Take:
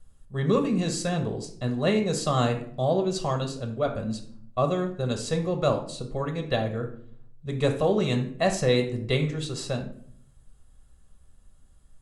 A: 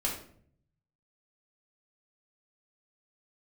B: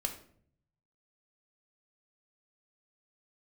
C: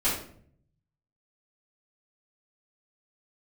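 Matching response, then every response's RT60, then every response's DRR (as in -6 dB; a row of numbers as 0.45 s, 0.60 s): B; 0.60 s, 0.60 s, 0.60 s; -3.5 dB, 3.5 dB, -12.5 dB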